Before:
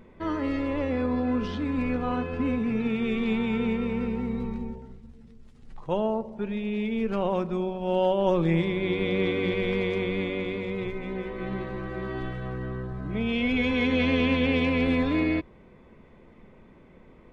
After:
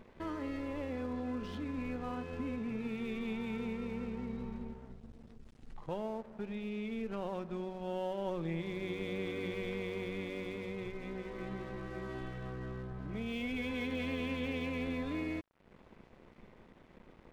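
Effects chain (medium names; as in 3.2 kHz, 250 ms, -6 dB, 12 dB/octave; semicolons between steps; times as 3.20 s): compression 2:1, threshold -44 dBFS, peak gain reduction 14 dB; crossover distortion -54.5 dBFS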